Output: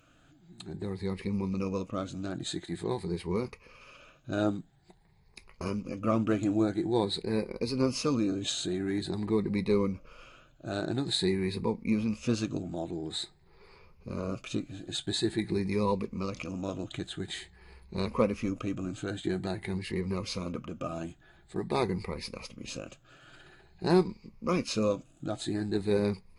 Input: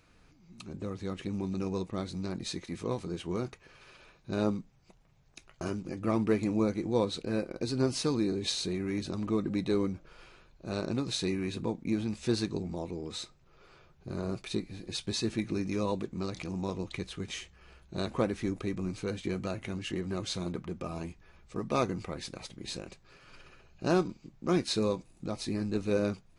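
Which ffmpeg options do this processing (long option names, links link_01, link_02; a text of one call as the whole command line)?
ffmpeg -i in.wav -af "afftfilt=real='re*pow(10,12/40*sin(2*PI*(0.87*log(max(b,1)*sr/1024/100)/log(2)-(0.48)*(pts-256)/sr)))':imag='im*pow(10,12/40*sin(2*PI*(0.87*log(max(b,1)*sr/1024/100)/log(2)-(0.48)*(pts-256)/sr)))':win_size=1024:overlap=0.75,equalizer=frequency=5800:width=8:gain=-9" out.wav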